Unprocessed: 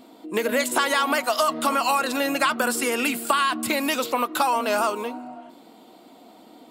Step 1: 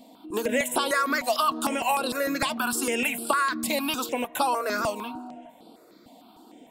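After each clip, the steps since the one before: step phaser 6.6 Hz 370–6600 Hz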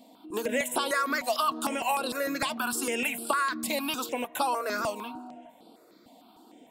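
low shelf 120 Hz -6 dB; gain -3 dB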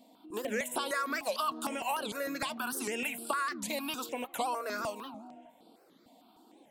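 record warp 78 rpm, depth 250 cents; gain -5.5 dB

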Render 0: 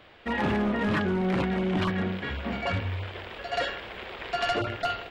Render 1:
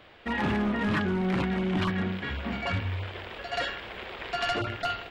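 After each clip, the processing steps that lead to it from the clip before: dynamic EQ 530 Hz, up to -5 dB, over -42 dBFS, Q 1.5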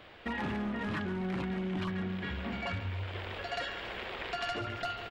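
on a send: feedback echo 0.139 s, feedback 60%, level -15 dB; on the sum: compressor 3:1, threshold -35 dBFS, peak gain reduction 9.5 dB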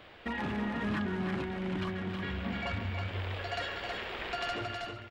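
ending faded out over 0.56 s; echo 0.319 s -5 dB

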